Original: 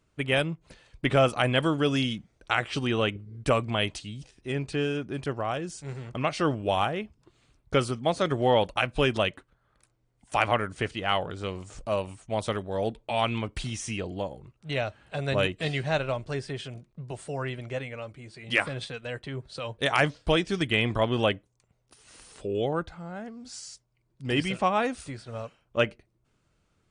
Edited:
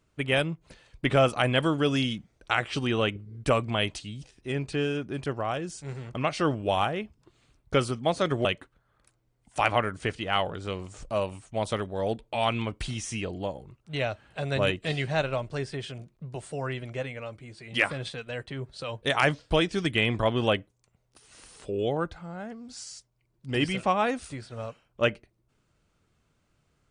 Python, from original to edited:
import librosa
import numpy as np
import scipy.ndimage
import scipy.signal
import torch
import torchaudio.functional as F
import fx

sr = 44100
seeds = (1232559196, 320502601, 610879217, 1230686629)

y = fx.edit(x, sr, fx.cut(start_s=8.45, length_s=0.76), tone=tone)